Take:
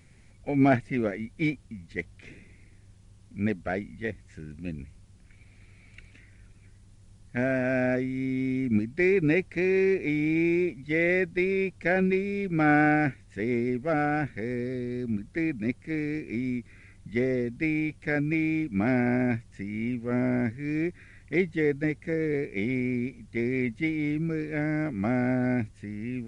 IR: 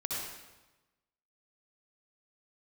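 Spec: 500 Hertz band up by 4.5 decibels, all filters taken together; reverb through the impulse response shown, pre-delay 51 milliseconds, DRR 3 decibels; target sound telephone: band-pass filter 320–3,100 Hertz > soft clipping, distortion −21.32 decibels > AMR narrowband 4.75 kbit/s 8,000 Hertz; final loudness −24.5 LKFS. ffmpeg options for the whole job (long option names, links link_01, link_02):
-filter_complex "[0:a]equalizer=frequency=500:width_type=o:gain=8,asplit=2[link_01][link_02];[1:a]atrim=start_sample=2205,adelay=51[link_03];[link_02][link_03]afir=irnorm=-1:irlink=0,volume=-7dB[link_04];[link_01][link_04]amix=inputs=2:normalize=0,highpass=320,lowpass=3100,asoftclip=threshold=-12.5dB,volume=2.5dB" -ar 8000 -c:a libopencore_amrnb -b:a 4750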